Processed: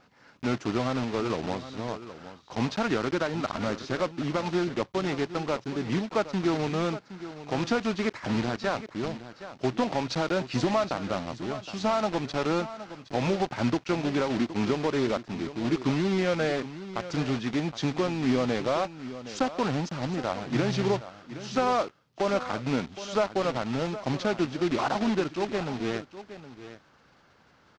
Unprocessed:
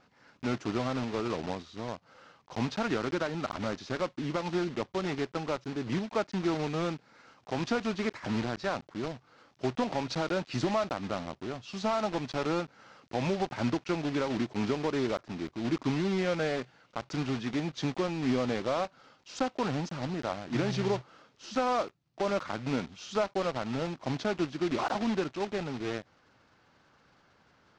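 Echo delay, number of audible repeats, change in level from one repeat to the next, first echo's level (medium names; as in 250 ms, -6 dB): 767 ms, 1, no regular repeats, -13.5 dB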